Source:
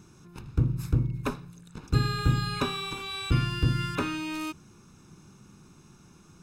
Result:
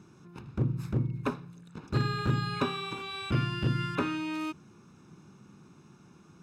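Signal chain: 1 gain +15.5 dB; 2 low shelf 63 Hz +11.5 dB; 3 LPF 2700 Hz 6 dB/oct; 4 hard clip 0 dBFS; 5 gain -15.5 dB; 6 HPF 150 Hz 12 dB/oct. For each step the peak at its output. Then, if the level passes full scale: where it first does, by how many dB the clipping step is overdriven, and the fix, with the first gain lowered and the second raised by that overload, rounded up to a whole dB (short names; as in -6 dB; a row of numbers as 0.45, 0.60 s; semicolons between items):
+5.0, +9.5, +9.5, 0.0, -15.5, -15.0 dBFS; step 1, 9.5 dB; step 1 +5.5 dB, step 5 -5.5 dB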